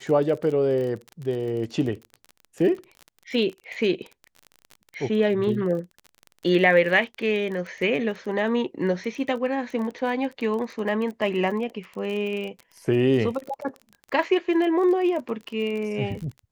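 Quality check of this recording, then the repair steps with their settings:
crackle 29 per s -31 dBFS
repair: de-click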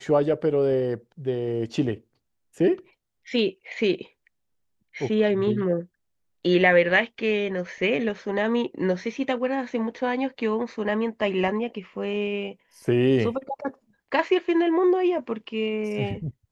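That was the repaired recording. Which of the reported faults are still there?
nothing left

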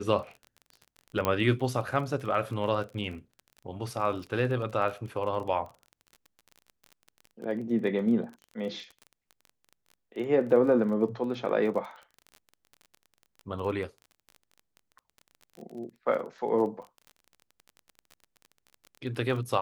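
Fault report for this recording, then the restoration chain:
crackle 24 per s -37 dBFS
1.25 s: pop -12 dBFS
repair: de-click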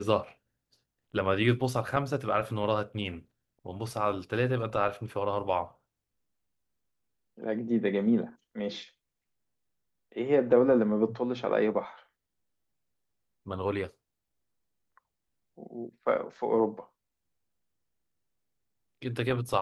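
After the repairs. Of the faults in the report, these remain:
nothing left

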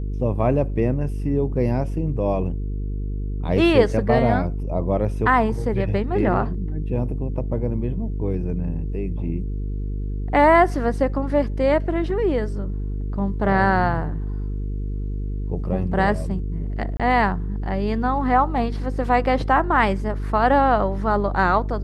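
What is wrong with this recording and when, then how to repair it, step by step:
buzz 50 Hz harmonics 9 -26 dBFS
16.97–17.00 s: dropout 26 ms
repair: de-hum 50 Hz, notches 9; interpolate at 16.97 s, 26 ms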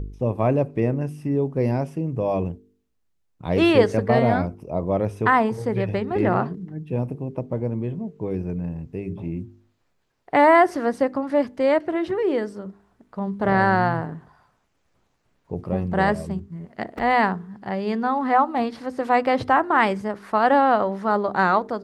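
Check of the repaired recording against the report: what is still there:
nothing left

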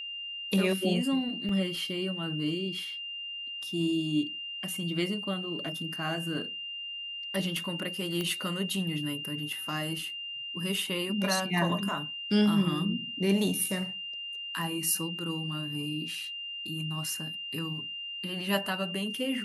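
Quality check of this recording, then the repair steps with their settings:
whine 2.8 kHz -36 dBFS
1.49 s: dropout 2.4 ms
8.21 s: pop -18 dBFS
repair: de-click; band-stop 2.8 kHz, Q 30; interpolate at 1.49 s, 2.4 ms

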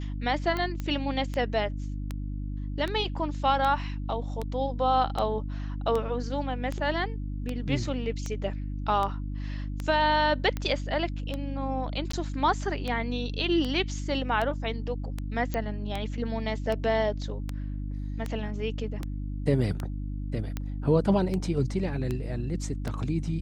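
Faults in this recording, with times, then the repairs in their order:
hum 50 Hz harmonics 6 -33 dBFS
tick 78 rpm -18 dBFS
0.80 s: pop -20 dBFS
12.12–12.13 s: dropout 14 ms
15.54 s: pop -16 dBFS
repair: de-click; de-hum 50 Hz, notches 6; interpolate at 12.12 s, 14 ms

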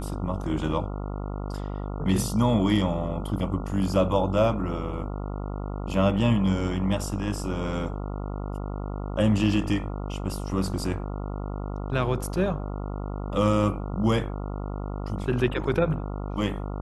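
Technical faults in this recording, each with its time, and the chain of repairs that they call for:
buzz 50 Hz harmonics 28 -32 dBFS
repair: de-hum 50 Hz, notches 28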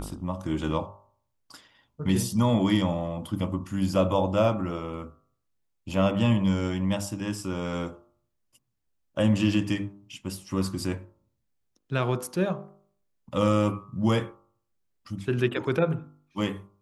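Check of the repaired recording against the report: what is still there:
nothing left

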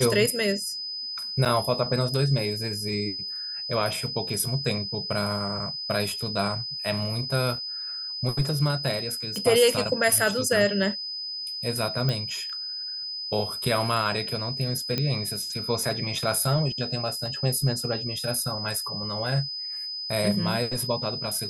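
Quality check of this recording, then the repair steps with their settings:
whine 5 kHz -31 dBFS
1.45–1.46 s: dropout 6.7 ms
9.36 s: pop -18 dBFS
12.09 s: pop -14 dBFS
14.98 s: pop -12 dBFS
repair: de-click; band-stop 5 kHz, Q 30; interpolate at 1.45 s, 6.7 ms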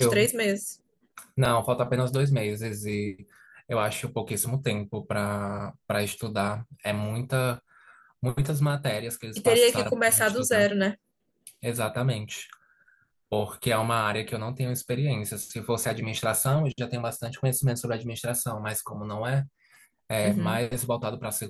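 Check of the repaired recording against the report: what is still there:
nothing left

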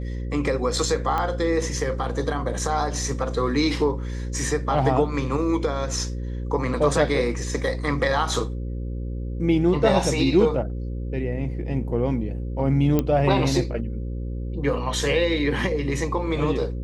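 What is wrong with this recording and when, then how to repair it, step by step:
buzz 60 Hz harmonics 9 -29 dBFS
1.18 s: pop -13 dBFS
12.99 s: pop -9 dBFS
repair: de-click; de-hum 60 Hz, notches 9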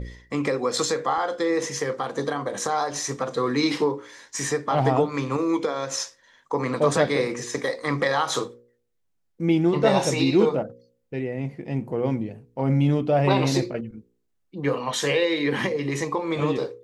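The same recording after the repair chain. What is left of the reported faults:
nothing left

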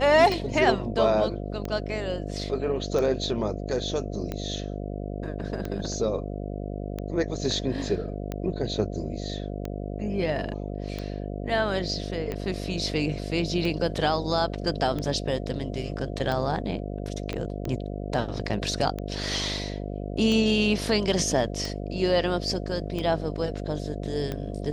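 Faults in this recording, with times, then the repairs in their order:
buzz 50 Hz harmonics 14 -33 dBFS
tick 45 rpm
17.33 s: pop -18 dBFS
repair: de-click; de-hum 50 Hz, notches 14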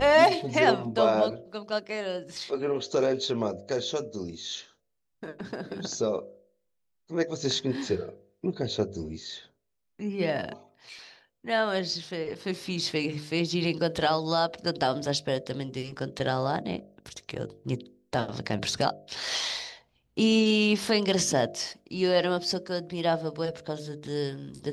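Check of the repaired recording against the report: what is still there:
17.33 s: pop

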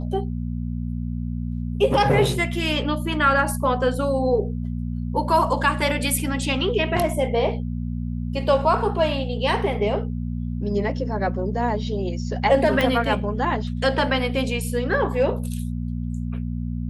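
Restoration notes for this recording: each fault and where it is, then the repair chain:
hum 60 Hz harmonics 4 -27 dBFS
12.81 s: pop -8 dBFS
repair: de-click; de-hum 60 Hz, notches 4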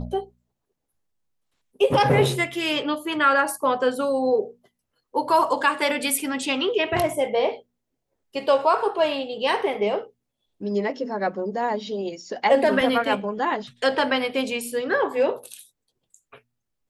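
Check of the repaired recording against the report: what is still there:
12.81 s: pop

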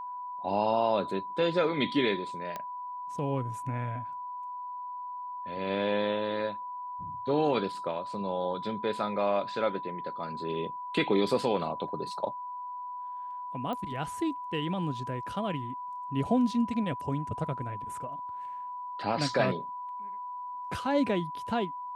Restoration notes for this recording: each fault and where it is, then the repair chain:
whine 990 Hz -36 dBFS
2.56 s: pop -21 dBFS
13.73 s: pop -24 dBFS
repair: de-click; band-stop 990 Hz, Q 30

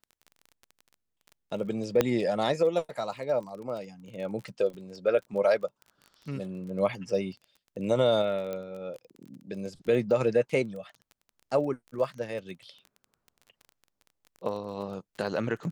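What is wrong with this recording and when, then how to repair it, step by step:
crackle 22 per s -38 dBFS
2.01 s: pop -9 dBFS
8.53 s: pop -22 dBFS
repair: de-click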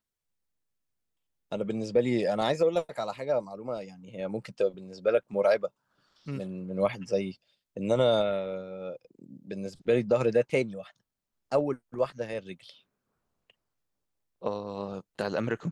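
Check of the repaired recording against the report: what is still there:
nothing left

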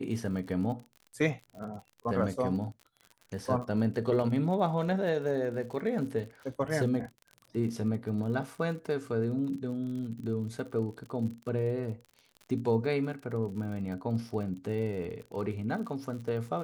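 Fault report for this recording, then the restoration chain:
crackle 54 per s -40 dBFS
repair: de-click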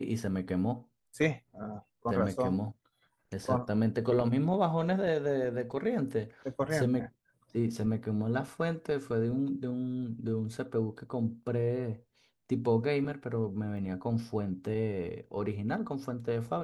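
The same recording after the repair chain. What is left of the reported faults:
nothing left

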